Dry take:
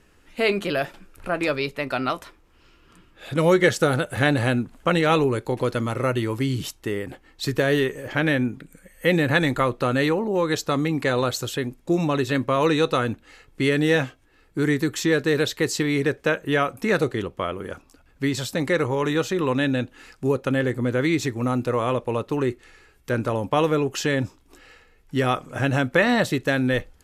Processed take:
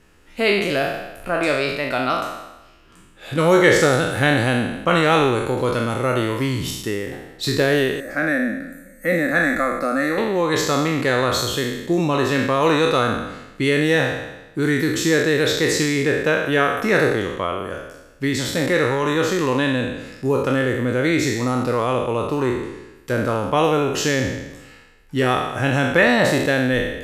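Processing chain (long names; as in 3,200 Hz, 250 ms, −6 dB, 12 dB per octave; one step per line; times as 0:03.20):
peak hold with a decay on every bin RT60 1.01 s
0:08.00–0:10.18: phaser with its sweep stopped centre 620 Hz, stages 8
level +1 dB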